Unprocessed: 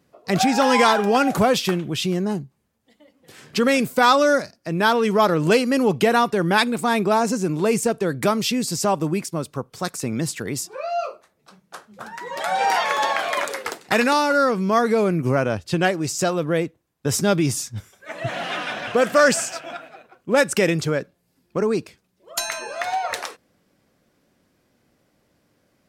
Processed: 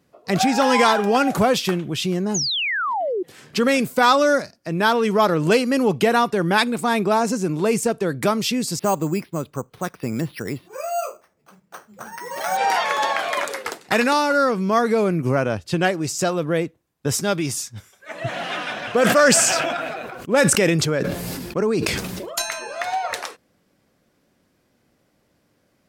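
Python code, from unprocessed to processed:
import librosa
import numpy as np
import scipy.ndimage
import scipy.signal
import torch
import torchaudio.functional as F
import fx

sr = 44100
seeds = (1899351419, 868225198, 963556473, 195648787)

y = fx.spec_paint(x, sr, seeds[0], shape='fall', start_s=2.34, length_s=0.89, low_hz=340.0, high_hz=7000.0, level_db=-23.0)
y = fx.resample_bad(y, sr, factor=6, down='filtered', up='hold', at=(8.79, 12.57))
y = fx.low_shelf(y, sr, hz=470.0, db=-6.0, at=(17.12, 18.11))
y = fx.sustainer(y, sr, db_per_s=25.0, at=(18.89, 22.42))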